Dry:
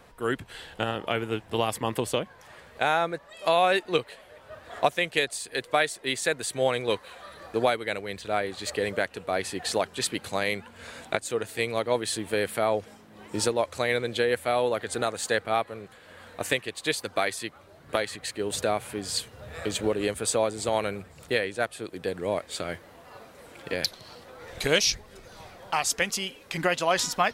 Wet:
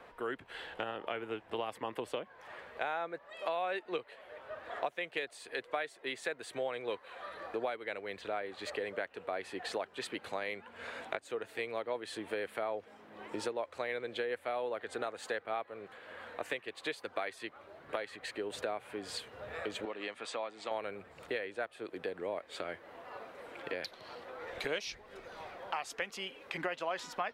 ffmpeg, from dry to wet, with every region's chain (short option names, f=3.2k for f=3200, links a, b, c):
-filter_complex "[0:a]asettb=1/sr,asplit=3[a][b][c];[a]atrim=end=19.854[d];[b]atrim=start=19.85:end=20.71,asetpts=PTS-STARTPTS,afade=t=in:d=0.004:c=qsin,afade=t=out:st=0.856:d=0.004:c=qsin,highpass=270,lowpass=5.5k,equalizer=f=430:t=o:w=1.2:g=-10.5,bandreject=f=1.5k:w=11[e];[c]atrim=start=20.706[f];[d][e]acrossfade=d=0.004:c1=hsin:c2=qsin[g];[g][f]acrossfade=d=0.004:c1=qsin:c2=hsin,acrossover=split=280 3300:gain=0.224 1 0.178[h][i][j];[h][i][j]amix=inputs=3:normalize=0,acompressor=threshold=-40dB:ratio=2.5,volume=1dB"